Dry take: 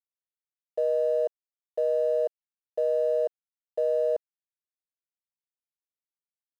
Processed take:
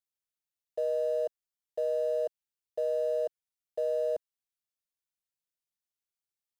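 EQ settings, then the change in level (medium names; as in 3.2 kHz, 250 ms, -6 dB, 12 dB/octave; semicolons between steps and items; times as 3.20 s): graphic EQ 250/500/1000/2000 Hz -6/-5/-5/-4 dB; +2.0 dB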